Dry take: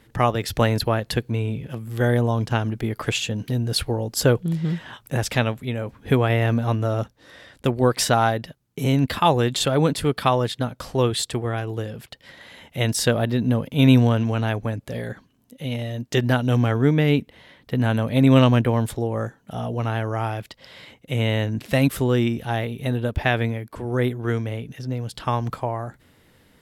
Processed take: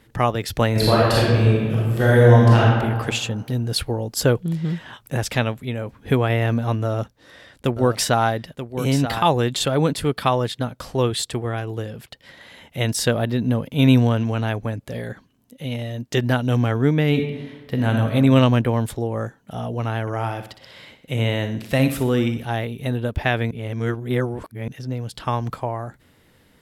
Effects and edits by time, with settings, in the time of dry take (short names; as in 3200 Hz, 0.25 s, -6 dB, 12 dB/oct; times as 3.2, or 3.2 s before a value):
0.71–2.6 reverb throw, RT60 1.6 s, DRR -7 dB
6.83–9.23 echo 0.932 s -10 dB
17.08–18.08 reverb throw, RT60 1.2 s, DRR 3.5 dB
20.01–22.45 feedback echo 61 ms, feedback 47%, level -10 dB
23.51–24.68 reverse